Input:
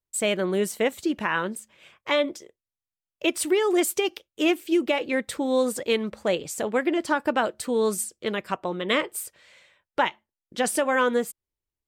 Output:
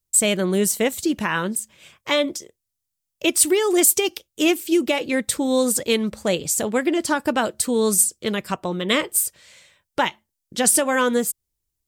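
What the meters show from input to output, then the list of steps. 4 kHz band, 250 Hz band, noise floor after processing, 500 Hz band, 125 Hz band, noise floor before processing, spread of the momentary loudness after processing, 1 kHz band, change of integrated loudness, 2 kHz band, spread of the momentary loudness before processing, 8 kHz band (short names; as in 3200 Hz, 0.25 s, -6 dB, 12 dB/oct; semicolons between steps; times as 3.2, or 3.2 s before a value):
+5.5 dB, +4.5 dB, -81 dBFS, +2.5 dB, +7.5 dB, under -85 dBFS, 10 LU, +1.5 dB, +5.0 dB, +2.5 dB, 8 LU, +13.0 dB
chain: tone controls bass +8 dB, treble +12 dB; gain +1.5 dB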